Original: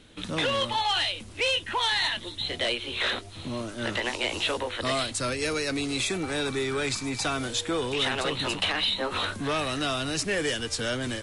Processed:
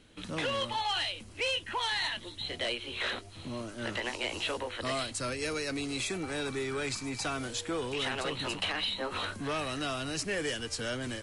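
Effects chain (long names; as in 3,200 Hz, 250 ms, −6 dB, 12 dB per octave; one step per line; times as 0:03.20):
notch filter 3,600 Hz, Q 13
level −5.5 dB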